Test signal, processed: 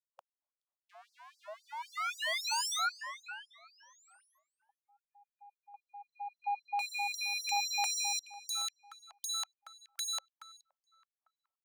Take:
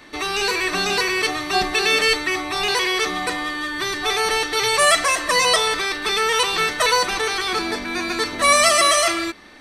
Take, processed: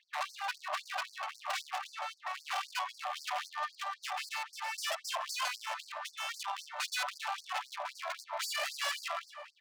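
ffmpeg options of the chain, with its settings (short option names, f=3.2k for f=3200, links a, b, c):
-filter_complex "[0:a]equalizer=f=3.3k:t=o:w=0.74:g=11,acompressor=threshold=-34dB:ratio=3,equalizer=f=250:t=o:w=1:g=-3,equalizer=f=500:t=o:w=1:g=4,equalizer=f=1k:t=o:w=1:g=9,equalizer=f=2k:t=o:w=1:g=-7,equalizer=f=4k:t=o:w=1:g=-11,equalizer=f=8k:t=o:w=1:g=3,adynamicsmooth=sensitivity=2:basefreq=640,aeval=exprs='0.0211*(abs(mod(val(0)/0.0211+3,4)-2)-1)':c=same,asplit=2[a][b];[b]adelay=424,lowpass=f=1.1k:p=1,volume=-8dB,asplit=2[c][d];[d]adelay=424,lowpass=f=1.1k:p=1,volume=0.45,asplit=2[e][f];[f]adelay=424,lowpass=f=1.1k:p=1,volume=0.45,asplit=2[g][h];[h]adelay=424,lowpass=f=1.1k:p=1,volume=0.45,asplit=2[i][j];[j]adelay=424,lowpass=f=1.1k:p=1,volume=0.45[k];[a][c][e][g][i][k]amix=inputs=6:normalize=0,afftfilt=real='re*gte(b*sr/1024,520*pow(4400/520,0.5+0.5*sin(2*PI*3.8*pts/sr)))':imag='im*gte(b*sr/1024,520*pow(4400/520,0.5+0.5*sin(2*PI*3.8*pts/sr)))':win_size=1024:overlap=0.75,volume=6dB"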